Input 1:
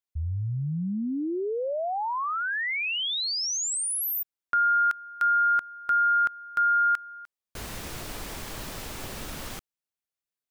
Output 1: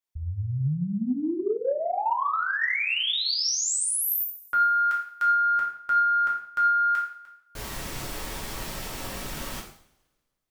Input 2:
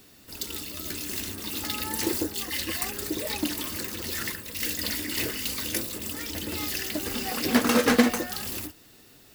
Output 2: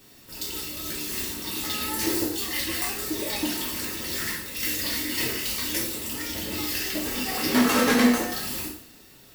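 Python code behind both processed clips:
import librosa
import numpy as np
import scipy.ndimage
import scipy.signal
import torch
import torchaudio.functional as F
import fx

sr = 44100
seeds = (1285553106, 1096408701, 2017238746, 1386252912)

p1 = fx.rev_double_slope(x, sr, seeds[0], early_s=0.54, late_s=1.6, knee_db=-24, drr_db=-4.5)
p2 = 10.0 ** (-11.5 / 20.0) * np.tanh(p1 / 10.0 ** (-11.5 / 20.0))
p3 = p1 + (p2 * librosa.db_to_amplitude(-6.5))
y = p3 * librosa.db_to_amplitude(-6.5)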